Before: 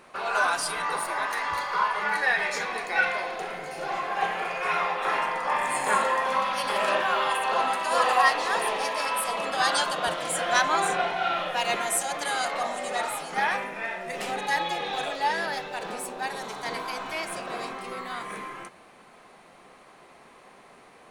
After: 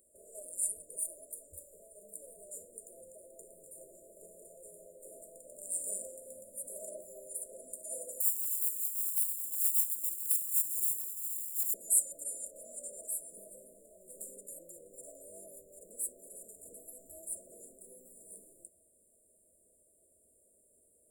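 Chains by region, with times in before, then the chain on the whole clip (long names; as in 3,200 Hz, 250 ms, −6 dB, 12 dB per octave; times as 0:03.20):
0:08.20–0:11.74: running median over 15 samples + Butterworth band-reject 760 Hz, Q 0.55 + RIAA equalisation recording
whole clip: first-order pre-emphasis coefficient 0.9; brick-wall band-stop 670–7,000 Hz; low shelf with overshoot 110 Hz +6.5 dB, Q 3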